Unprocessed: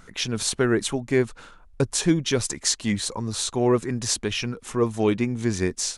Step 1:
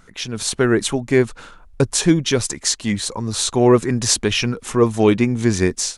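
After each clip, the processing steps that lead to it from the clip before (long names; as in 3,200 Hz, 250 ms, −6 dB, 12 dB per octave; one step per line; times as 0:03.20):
automatic gain control
level −1 dB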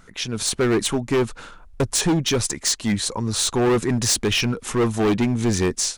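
hard clipping −15.5 dBFS, distortion −8 dB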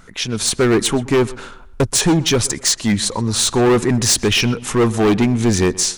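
feedback echo with a low-pass in the loop 126 ms, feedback 34%, low-pass 4,700 Hz, level −19.5 dB
level +5 dB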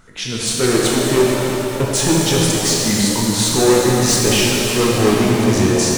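reverb with rising layers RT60 3.3 s, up +7 semitones, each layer −8 dB, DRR −4 dB
level −4.5 dB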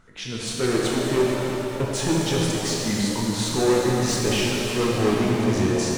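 high-shelf EQ 6,300 Hz −9 dB
level −6.5 dB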